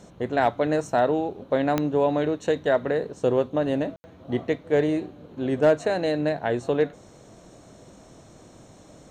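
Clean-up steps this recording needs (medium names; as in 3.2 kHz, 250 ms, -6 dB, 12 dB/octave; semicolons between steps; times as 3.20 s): clip repair -11 dBFS; de-click; room tone fill 3.96–4.04 s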